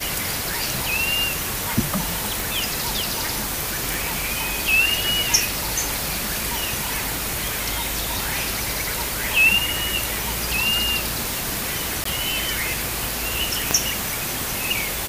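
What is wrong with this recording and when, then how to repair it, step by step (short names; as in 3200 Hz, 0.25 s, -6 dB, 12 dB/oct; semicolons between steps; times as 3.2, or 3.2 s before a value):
crackle 56/s -28 dBFS
2.4 pop
3.94 pop
12.04–12.05 gap 14 ms
13.71 pop -2 dBFS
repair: de-click; interpolate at 12.04, 14 ms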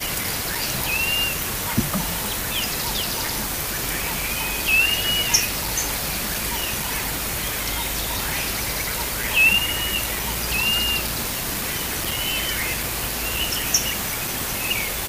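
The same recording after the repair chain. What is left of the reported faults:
13.71 pop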